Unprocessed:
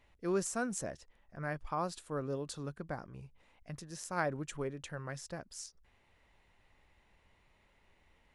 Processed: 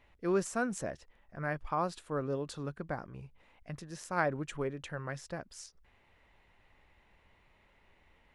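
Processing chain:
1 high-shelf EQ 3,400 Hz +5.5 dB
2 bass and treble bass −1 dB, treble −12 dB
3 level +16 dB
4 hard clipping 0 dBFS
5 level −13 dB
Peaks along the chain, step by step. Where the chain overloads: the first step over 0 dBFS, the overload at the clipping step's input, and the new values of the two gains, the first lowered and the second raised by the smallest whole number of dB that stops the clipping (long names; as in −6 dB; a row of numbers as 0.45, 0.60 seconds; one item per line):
−15.5, −18.0, −2.0, −2.0, −15.0 dBFS
no step passes full scale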